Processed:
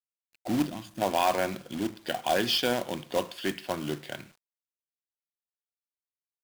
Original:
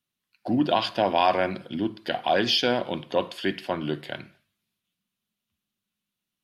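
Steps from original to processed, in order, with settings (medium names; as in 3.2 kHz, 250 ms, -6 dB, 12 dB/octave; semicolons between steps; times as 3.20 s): time-frequency box 0.68–1.02 s, 340–6100 Hz -18 dB; companded quantiser 4-bit; trim -4 dB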